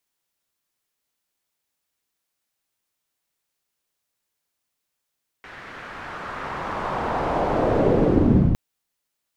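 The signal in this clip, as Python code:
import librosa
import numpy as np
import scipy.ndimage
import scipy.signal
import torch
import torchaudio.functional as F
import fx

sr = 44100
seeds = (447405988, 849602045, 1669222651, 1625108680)

y = fx.riser_noise(sr, seeds[0], length_s=3.11, colour='white', kind='lowpass', start_hz=1800.0, end_hz=110.0, q=1.7, swell_db=37.5, law='linear')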